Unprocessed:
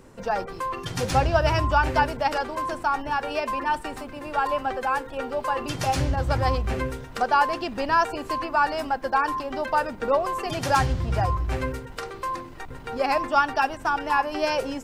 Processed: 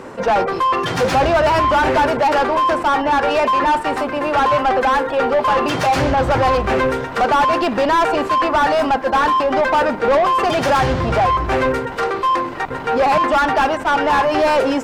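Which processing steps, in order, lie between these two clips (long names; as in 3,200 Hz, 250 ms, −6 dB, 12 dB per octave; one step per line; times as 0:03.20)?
mid-hump overdrive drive 30 dB, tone 1,200 Hz, clips at −5.5 dBFS
level that may rise only so fast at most 340 dB per second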